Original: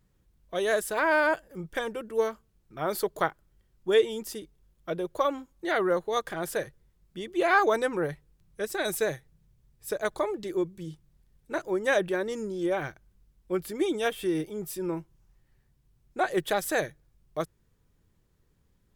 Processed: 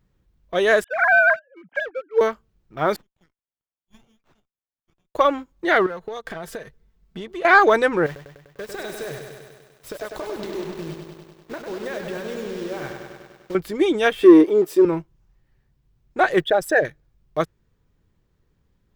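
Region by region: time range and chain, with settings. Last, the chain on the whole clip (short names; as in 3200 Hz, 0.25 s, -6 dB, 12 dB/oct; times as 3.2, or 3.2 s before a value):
0.84–2.21 sine-wave speech + HPF 540 Hz 6 dB/oct + comb 1.3 ms, depth 42%
2.96–5.15 inverse Chebyshev high-pass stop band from 1200 Hz, stop band 60 dB + air absorption 330 m + running maximum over 9 samples
5.86–7.45 comb 4.5 ms, depth 55% + compressor 16:1, threshold -35 dBFS
8.06–13.55 compressor 10:1, threshold -36 dBFS + requantised 8-bit, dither none + lo-fi delay 99 ms, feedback 80%, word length 10-bit, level -5.5 dB
14.22–14.85 resonant high-pass 330 Hz, resonance Q 2.6 + bell 560 Hz +5.5 dB 2.6 oct
16.44–16.85 formant sharpening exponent 2 + mismatched tape noise reduction encoder only
whole clip: dynamic EQ 1900 Hz, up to +4 dB, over -40 dBFS, Q 1; sample leveller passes 1; bell 11000 Hz -11.5 dB 1.2 oct; gain +4.5 dB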